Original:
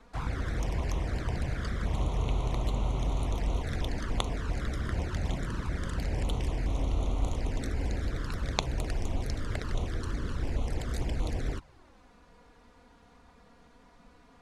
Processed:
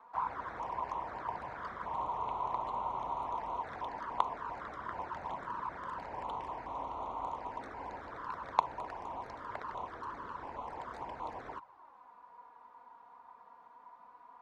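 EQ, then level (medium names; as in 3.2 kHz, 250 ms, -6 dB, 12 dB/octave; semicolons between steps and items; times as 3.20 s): band-pass filter 970 Hz, Q 6.3; +12.0 dB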